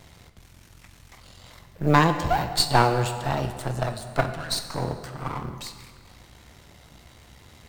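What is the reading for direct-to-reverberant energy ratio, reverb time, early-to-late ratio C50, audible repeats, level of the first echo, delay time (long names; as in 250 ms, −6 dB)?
7.5 dB, 1.9 s, 9.5 dB, no echo audible, no echo audible, no echo audible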